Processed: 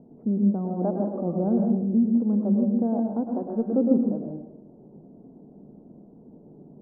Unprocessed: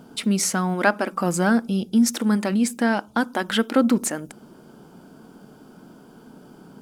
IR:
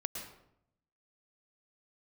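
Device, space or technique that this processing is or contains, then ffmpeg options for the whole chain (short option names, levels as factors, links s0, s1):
next room: -filter_complex "[0:a]lowpass=f=690:w=0.5412,lowpass=f=690:w=1.3066,lowpass=1000[s0];[1:a]atrim=start_sample=2205[s1];[s0][s1]afir=irnorm=-1:irlink=0,volume=0.708"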